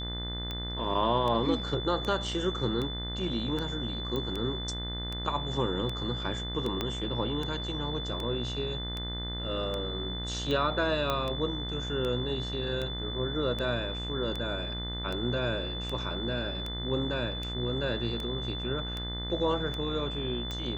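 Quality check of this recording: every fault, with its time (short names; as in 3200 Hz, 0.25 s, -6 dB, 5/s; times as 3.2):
buzz 60 Hz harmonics 35 -37 dBFS
tick 78 rpm -21 dBFS
tone 3500 Hz -37 dBFS
4.16 pop -21 dBFS
6.81 pop -16 dBFS
11.1 pop -15 dBFS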